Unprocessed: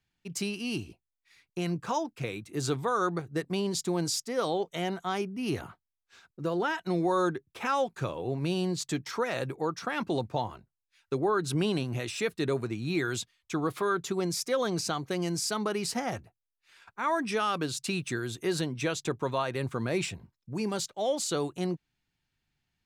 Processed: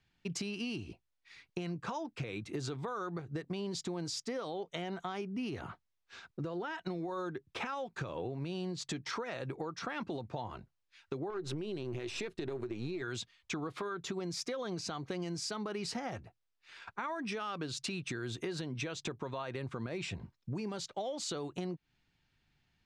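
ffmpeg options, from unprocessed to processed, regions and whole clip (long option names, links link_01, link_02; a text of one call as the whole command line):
ffmpeg -i in.wav -filter_complex "[0:a]asettb=1/sr,asplit=3[link_01][link_02][link_03];[link_01]atrim=end=11.304[link_04];[link_02]atrim=start=11.3:end=13.02,asetpts=PTS-STARTPTS,afade=type=in:duration=0.004:curve=qsin,afade=type=out:start_time=1.716:duration=0.004:curve=qsin,aeval=exprs='if(lt(val(0),0),0.447*val(0),val(0))':channel_layout=same,equalizer=frequency=370:width=5.7:gain=13,acompressor=threshold=-29dB:ratio=3:attack=3.2:release=140:knee=1:detection=peak[link_05];[link_03]atrim=start=13.016[link_06];[link_04][link_05]acrossfade=duration=0.004:curve1=hsin:curve2=qsin[link_07];[link_07][link_06]acrossfade=duration=0.004:curve1=qsin:curve2=hsin,lowpass=5400,alimiter=level_in=3.5dB:limit=-24dB:level=0:latency=1:release=228,volume=-3.5dB,acompressor=threshold=-41dB:ratio=6,volume=5.5dB" out.wav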